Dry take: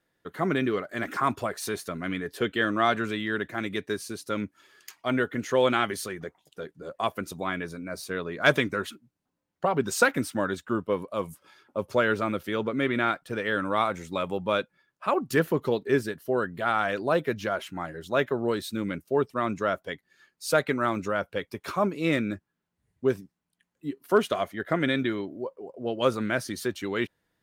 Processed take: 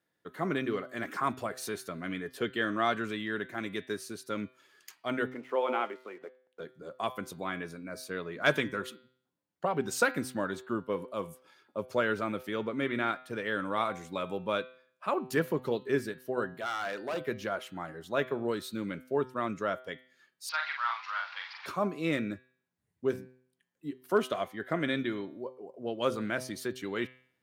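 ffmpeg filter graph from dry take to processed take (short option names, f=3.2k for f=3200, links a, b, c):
-filter_complex "[0:a]asettb=1/sr,asplit=3[a][b][c];[a]atrim=end=5.304[d];[b]atrim=start=5.3:end=6.6,asetpts=PTS-STARTPTS,afade=t=in:d=0.004:c=qsin,afade=t=out:st=1.296:d=0.004:c=qsin,highpass=f=280:w=0.5412,highpass=f=280:w=1.3066,equalizer=f=340:t=q:w=4:g=-3,equalizer=f=880:t=q:w=4:g=5,equalizer=f=1.7k:t=q:w=4:g=-10,lowpass=f=2.6k:w=0.5412,lowpass=f=2.6k:w=1.3066,aeval=exprs='sgn(val(0))*max(abs(val(0))-0.00141,0)':c=same[e];[c]atrim=start=6.596[f];[d][e]acrossfade=d=0.004:c1=hsin:c2=qsin[g];[g][f]acrossfade=d=0.004:c1=qsin:c2=hsin,asettb=1/sr,asplit=3[h][i][j];[h]atrim=end=16.544[k];[i]atrim=start=16.54:end=17.21,asetpts=PTS-STARTPTS,afade=t=in:d=0.004:c=qsin,afade=t=out:st=0.666:d=0.004:c=qsin,highpass=f=310:p=1,asoftclip=type=hard:threshold=-24.5dB[l];[j]atrim=start=17.206[m];[k][l]acrossfade=d=0.004:c1=hsin:c2=qsin[n];[n][m]acrossfade=d=0.004:c1=qsin:c2=hsin,asettb=1/sr,asplit=3[o][p][q];[o]atrim=end=20.494[r];[p]atrim=start=20.49:end=21.66,asetpts=PTS-STARTPTS,afade=t=in:d=0.004:c=qsin,afade=t=out:st=1.166:d=0.004:c=qsin,aeval=exprs='val(0)+0.5*0.0224*sgn(val(0))':c=same,asuperpass=centerf=2100:order=12:qfactor=0.52,asplit=2[s][t];[t]adelay=44,volume=-3.5dB[u];[s][u]amix=inputs=2:normalize=0,atrim=end_sample=51597[v];[q]atrim=start=21.656[w];[r][v]acrossfade=d=0.004:c1=hsin:c2=qsin[x];[x][w]acrossfade=d=0.004:c1=qsin:c2=hsin,highpass=98,bandreject=f=127.8:t=h:w=4,bandreject=f=255.6:t=h:w=4,bandreject=f=383.4:t=h:w=4,bandreject=f=511.2:t=h:w=4,bandreject=f=639:t=h:w=4,bandreject=f=766.8:t=h:w=4,bandreject=f=894.6:t=h:w=4,bandreject=f=1.0224k:t=h:w=4,bandreject=f=1.1502k:t=h:w=4,bandreject=f=1.278k:t=h:w=4,bandreject=f=1.4058k:t=h:w=4,bandreject=f=1.5336k:t=h:w=4,bandreject=f=1.6614k:t=h:w=4,bandreject=f=1.7892k:t=h:w=4,bandreject=f=1.917k:t=h:w=4,bandreject=f=2.0448k:t=h:w=4,bandreject=f=2.1726k:t=h:w=4,bandreject=f=2.3004k:t=h:w=4,bandreject=f=2.4282k:t=h:w=4,bandreject=f=2.556k:t=h:w=4,bandreject=f=2.6838k:t=h:w=4,bandreject=f=2.8116k:t=h:w=4,bandreject=f=2.9394k:t=h:w=4,bandreject=f=3.0672k:t=h:w=4,bandreject=f=3.195k:t=h:w=4,bandreject=f=3.3228k:t=h:w=4,bandreject=f=3.4506k:t=h:w=4,bandreject=f=3.5784k:t=h:w=4,bandreject=f=3.7062k:t=h:w=4,bandreject=f=3.834k:t=h:w=4,bandreject=f=3.9618k:t=h:w=4,bandreject=f=4.0896k:t=h:w=4,bandreject=f=4.2174k:t=h:w=4,bandreject=f=4.3452k:t=h:w=4,bandreject=f=4.473k:t=h:w=4,bandreject=f=4.6008k:t=h:w=4,bandreject=f=4.7286k:t=h:w=4,volume=-5dB"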